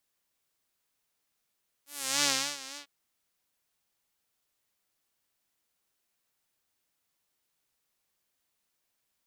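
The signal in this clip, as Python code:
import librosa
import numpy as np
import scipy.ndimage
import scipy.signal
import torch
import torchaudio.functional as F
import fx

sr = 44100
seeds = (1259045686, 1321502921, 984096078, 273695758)

y = fx.sub_patch_vibrato(sr, seeds[0], note=61, wave='saw', wave2='saw', interval_st=-12, detune_cents=14, level2_db=-9.0, sub_db=-15.0, noise_db=-27.0, kind='bandpass', cutoff_hz=3400.0, q=1.2, env_oct=2.0, env_decay_s=0.34, env_sustain_pct=40, attack_ms=379.0, decay_s=0.33, sustain_db=-17.0, release_s=0.09, note_s=0.91, lfo_hz=3.5, vibrato_cents=80)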